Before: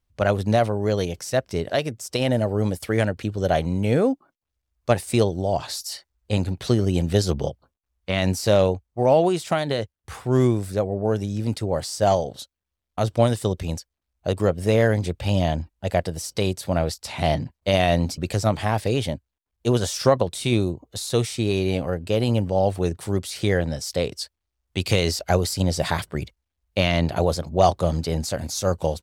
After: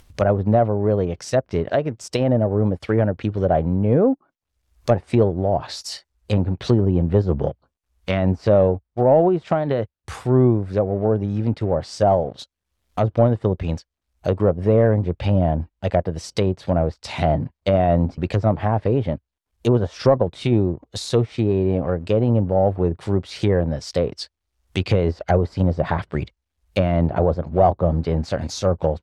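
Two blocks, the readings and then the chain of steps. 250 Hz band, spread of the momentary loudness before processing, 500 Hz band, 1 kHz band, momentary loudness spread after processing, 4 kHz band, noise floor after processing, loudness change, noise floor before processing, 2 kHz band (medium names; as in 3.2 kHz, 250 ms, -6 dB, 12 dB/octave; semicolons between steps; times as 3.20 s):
+3.5 dB, 10 LU, +3.0 dB, +1.5 dB, 9 LU, -5.5 dB, -81 dBFS, +2.5 dB, -83 dBFS, -4.0 dB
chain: upward compressor, threshold -32 dBFS; waveshaping leveller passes 1; low-pass that closes with the level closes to 1 kHz, closed at -15 dBFS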